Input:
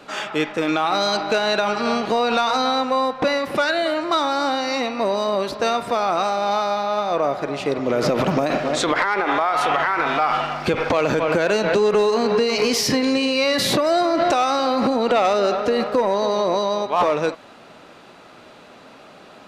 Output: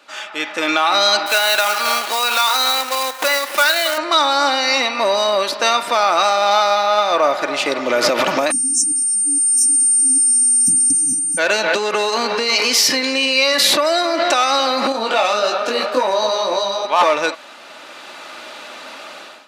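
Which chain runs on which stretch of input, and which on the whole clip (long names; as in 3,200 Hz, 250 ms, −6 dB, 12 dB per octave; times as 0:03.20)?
0:01.26–0:03.98: high-pass filter 680 Hz 6 dB per octave + log-companded quantiser 4 bits
0:08.50–0:11.37: mains-hum notches 50/100/150/200 Hz + steady tone 9,000 Hz −23 dBFS + linear-phase brick-wall band-stop 300–5,200 Hz
0:14.92–0:16.85: notch filter 2,000 Hz, Q 10 + micro pitch shift up and down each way 39 cents
whole clip: high-pass filter 1,500 Hz 6 dB per octave; comb filter 3.4 ms, depth 36%; automatic gain control gain up to 16.5 dB; level −1 dB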